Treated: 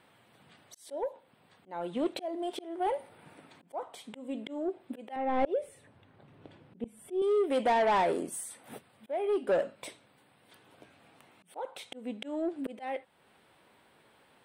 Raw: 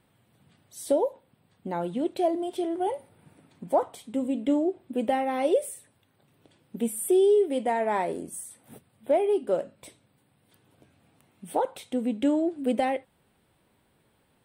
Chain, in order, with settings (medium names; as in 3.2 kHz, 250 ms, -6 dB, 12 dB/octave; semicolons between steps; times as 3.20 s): slow attack 540 ms; overdrive pedal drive 19 dB, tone 3.2 kHz, clips at -14.5 dBFS; 5.16–7.22 s: RIAA curve playback; trim -4 dB